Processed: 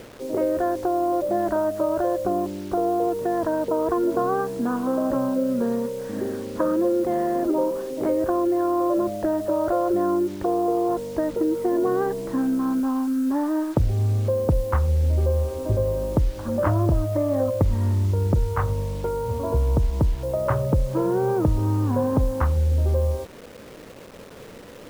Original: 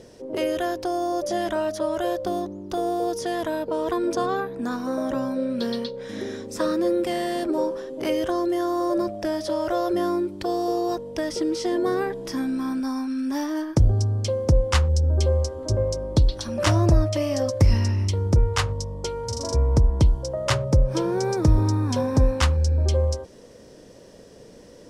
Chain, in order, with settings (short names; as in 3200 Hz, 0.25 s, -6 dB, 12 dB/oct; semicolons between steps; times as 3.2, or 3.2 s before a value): LPF 1400 Hz 24 dB/oct; compressor 4:1, threshold -22 dBFS, peak gain reduction 9.5 dB; requantised 8-bit, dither none; gain +4 dB